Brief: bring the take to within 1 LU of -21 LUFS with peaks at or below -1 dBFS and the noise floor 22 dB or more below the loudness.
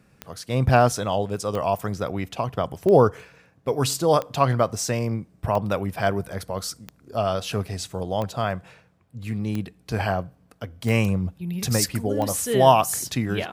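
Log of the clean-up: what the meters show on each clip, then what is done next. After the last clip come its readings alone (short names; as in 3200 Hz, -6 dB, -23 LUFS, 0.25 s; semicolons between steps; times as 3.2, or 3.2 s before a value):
clicks 10; loudness -24.0 LUFS; peak -3.0 dBFS; loudness target -21.0 LUFS
-> de-click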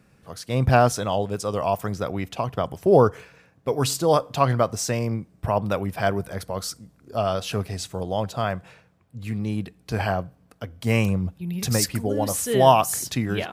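clicks 0; loudness -24.0 LUFS; peak -3.0 dBFS; loudness target -21.0 LUFS
-> gain +3 dB; limiter -1 dBFS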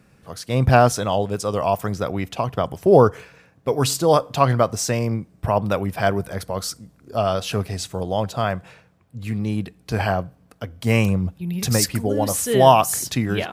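loudness -21.0 LUFS; peak -1.0 dBFS; noise floor -56 dBFS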